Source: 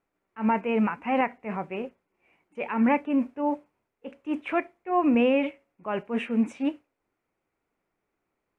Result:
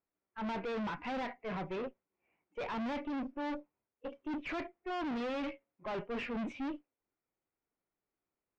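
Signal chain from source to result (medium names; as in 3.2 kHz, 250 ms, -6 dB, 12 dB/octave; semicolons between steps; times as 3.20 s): spectral noise reduction 15 dB; valve stage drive 40 dB, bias 0.45; distance through air 210 m; trim +5 dB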